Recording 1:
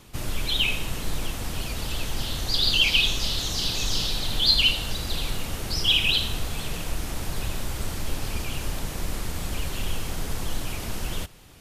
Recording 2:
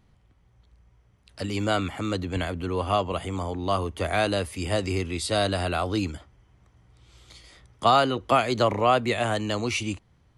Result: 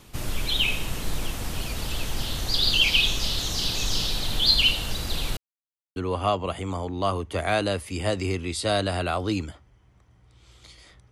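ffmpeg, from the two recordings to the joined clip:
-filter_complex "[0:a]apad=whole_dur=11.11,atrim=end=11.11,asplit=2[s0][s1];[s0]atrim=end=5.37,asetpts=PTS-STARTPTS,afade=t=out:st=5.366:d=0.004:c=hsin[s2];[s1]atrim=start=5.37:end=5.96,asetpts=PTS-STARTPTS,volume=0[s3];[1:a]atrim=start=2.62:end=7.77,asetpts=PTS-STARTPTS,afade=t=in:d=0.004:c=hsin[s4];[s2][s3][s4]concat=n=3:v=0:a=1"

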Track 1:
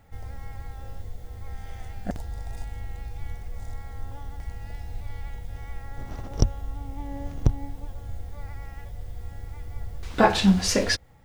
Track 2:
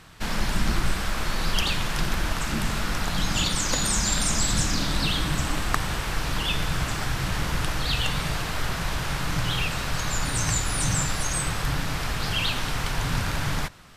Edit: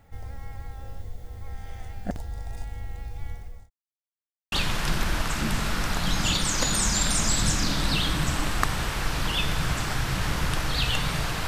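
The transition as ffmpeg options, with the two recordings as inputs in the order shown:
-filter_complex "[0:a]apad=whole_dur=11.47,atrim=end=11.47,asplit=2[s0][s1];[s0]atrim=end=3.7,asetpts=PTS-STARTPTS,afade=t=out:st=3.2:d=0.5:c=qsin[s2];[s1]atrim=start=3.7:end=4.52,asetpts=PTS-STARTPTS,volume=0[s3];[1:a]atrim=start=1.63:end=8.58,asetpts=PTS-STARTPTS,afade=t=in:d=0.004:c=hsin[s4];[s2][s3][s4]concat=n=3:v=0:a=1"

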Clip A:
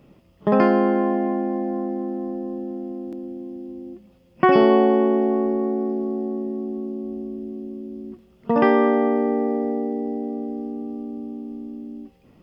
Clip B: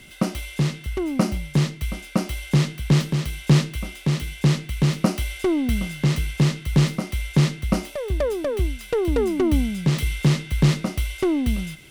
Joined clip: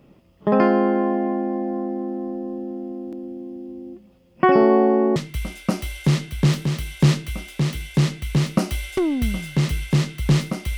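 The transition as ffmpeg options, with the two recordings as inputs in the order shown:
-filter_complex "[0:a]asettb=1/sr,asplit=3[s0][s1][s2];[s0]atrim=end=4.524[s3];[s1]atrim=start=4.52:end=5.16,asetpts=PTS-STARTPTS,afade=t=in:d=0.004:c=qsin,afade=t=out:st=0.636:d=0.004:c=qsin,equalizer=f=3200:w=2.8:g=-14.5[s4];[s2]atrim=start=5.156[s5];[s3][s4]acrossfade=d=0.004:c1=hsin:c2=qsin[s6];[s6][s5]acrossfade=d=0.004:c1=qsin:c2=hsin,apad=whole_dur=10.77,atrim=end=10.77,atrim=end=5.162[s7];[1:a]atrim=start=1.628:end=7.24[s8];[s7][s8]acrossfade=d=0.004:c1=hsin:c2=hsin"

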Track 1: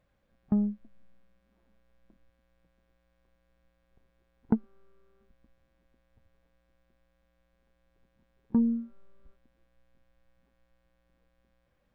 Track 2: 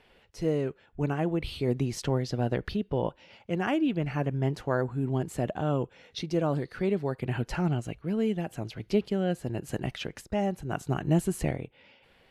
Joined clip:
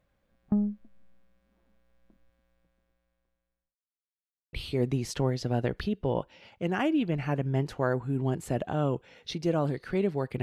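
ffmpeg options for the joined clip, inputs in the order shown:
-filter_complex "[0:a]apad=whole_dur=10.42,atrim=end=10.42,asplit=2[s0][s1];[s0]atrim=end=3.76,asetpts=PTS-STARTPTS,afade=t=out:st=2.38:d=1.38[s2];[s1]atrim=start=3.76:end=4.53,asetpts=PTS-STARTPTS,volume=0[s3];[1:a]atrim=start=1.41:end=7.3,asetpts=PTS-STARTPTS,afade=t=in:d=0.004:c=hsin[s4];[s2][s3][s4]concat=n=3:v=0:a=1"

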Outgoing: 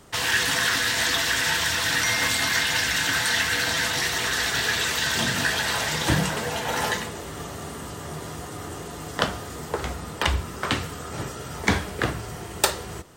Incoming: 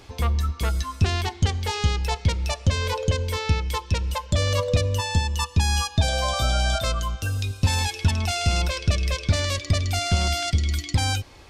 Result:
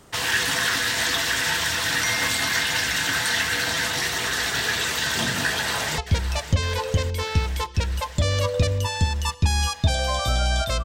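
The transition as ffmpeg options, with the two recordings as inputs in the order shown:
-filter_complex "[0:a]apad=whole_dur=10.84,atrim=end=10.84,atrim=end=5.982[s0];[1:a]atrim=start=2.118:end=6.98[s1];[s0][s1]acrossfade=d=0.004:c1=hsin:c2=hsin,asplit=2[s2][s3];[s3]afade=t=in:st=5.5:d=0.01,afade=t=out:st=5.98:d=0.01,aecho=0:1:560|1120|1680|2240|2800|3360|3920|4480|5040|5600|6160|6720:0.251189|0.200951|0.160761|0.128609|0.102887|0.0823095|0.0658476|0.0526781|0.0421425|0.033714|0.0269712|0.0215769[s4];[s2][s4]amix=inputs=2:normalize=0"

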